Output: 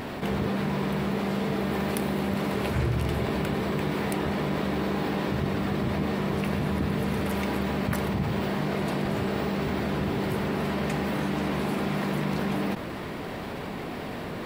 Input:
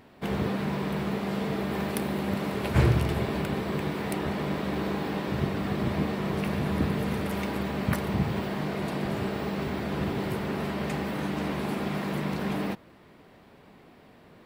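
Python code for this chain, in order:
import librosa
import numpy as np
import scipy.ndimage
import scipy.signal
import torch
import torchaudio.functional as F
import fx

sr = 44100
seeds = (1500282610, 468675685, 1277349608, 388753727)

y = fx.env_flatten(x, sr, amount_pct=70)
y = y * librosa.db_to_amplitude(-6.5)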